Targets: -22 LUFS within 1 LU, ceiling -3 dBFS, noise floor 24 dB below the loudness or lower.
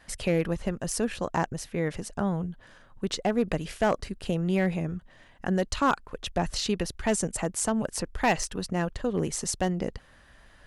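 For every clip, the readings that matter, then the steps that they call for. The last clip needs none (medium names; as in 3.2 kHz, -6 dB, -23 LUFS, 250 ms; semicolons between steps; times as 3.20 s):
clipped samples 0.3%; clipping level -16.0 dBFS; loudness -29.0 LUFS; peak level -16.0 dBFS; loudness target -22.0 LUFS
-> clip repair -16 dBFS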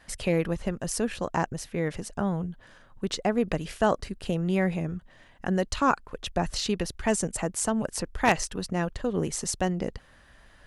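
clipped samples 0.0%; loudness -29.0 LUFS; peak level -7.0 dBFS; loudness target -22.0 LUFS
-> trim +7 dB; peak limiter -3 dBFS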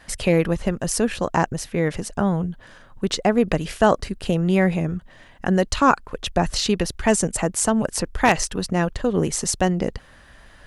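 loudness -22.0 LUFS; peak level -3.0 dBFS; noise floor -49 dBFS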